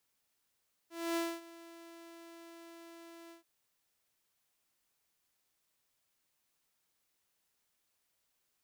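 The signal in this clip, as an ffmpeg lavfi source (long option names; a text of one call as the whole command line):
ffmpeg -f lavfi -i "aevalsrc='0.0376*(2*mod(335*t,1)-1)':duration=2.532:sample_rate=44100,afade=type=in:duration=0.262,afade=type=out:start_time=0.262:duration=0.243:silence=0.1,afade=type=out:start_time=2.41:duration=0.122" out.wav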